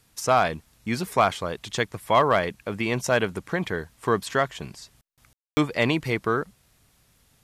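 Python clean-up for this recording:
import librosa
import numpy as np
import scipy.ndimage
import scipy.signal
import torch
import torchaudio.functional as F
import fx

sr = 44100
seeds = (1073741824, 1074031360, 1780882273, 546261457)

y = fx.fix_declip(x, sr, threshold_db=-9.5)
y = fx.fix_ambience(y, sr, seeds[0], print_start_s=6.89, print_end_s=7.39, start_s=5.33, end_s=5.57)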